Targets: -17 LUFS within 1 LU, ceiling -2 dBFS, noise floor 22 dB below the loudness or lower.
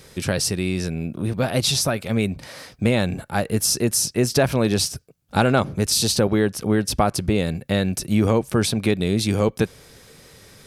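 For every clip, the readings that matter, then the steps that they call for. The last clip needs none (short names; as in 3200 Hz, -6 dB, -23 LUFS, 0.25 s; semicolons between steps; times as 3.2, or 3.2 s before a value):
loudness -21.5 LUFS; peak -2.0 dBFS; loudness target -17.0 LUFS
-> gain +4.5 dB; limiter -2 dBFS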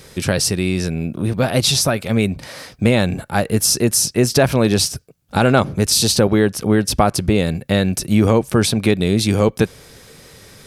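loudness -17.0 LUFS; peak -2.0 dBFS; noise floor -45 dBFS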